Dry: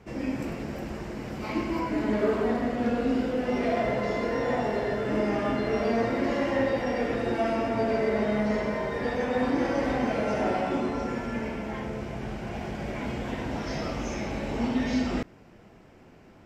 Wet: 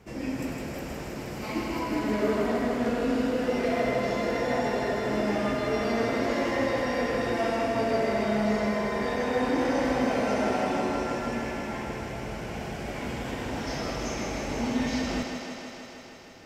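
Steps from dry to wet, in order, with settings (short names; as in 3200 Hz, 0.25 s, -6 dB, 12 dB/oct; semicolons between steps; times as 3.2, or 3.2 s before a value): high shelf 5600 Hz +10 dB; thinning echo 0.158 s, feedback 79%, high-pass 150 Hz, level -5 dB; gain -2 dB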